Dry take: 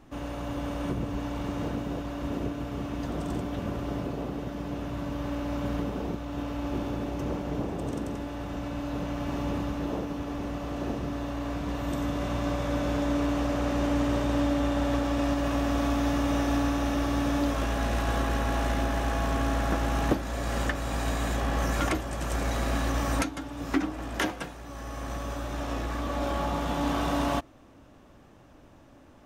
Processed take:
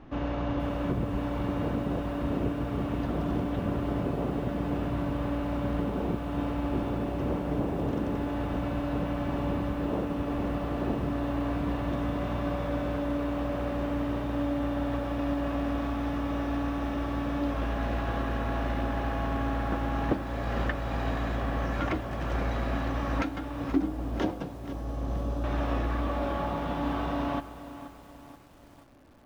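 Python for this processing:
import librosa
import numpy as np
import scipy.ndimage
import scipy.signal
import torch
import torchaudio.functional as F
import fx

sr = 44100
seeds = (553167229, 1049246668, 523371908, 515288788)

y = fx.peak_eq(x, sr, hz=1900.0, db=-15.0, octaves=2.0, at=(23.72, 25.44))
y = fx.rider(y, sr, range_db=5, speed_s=0.5)
y = fx.air_absorb(y, sr, metres=240.0)
y = fx.echo_crushed(y, sr, ms=479, feedback_pct=55, bits=8, wet_db=-13.0)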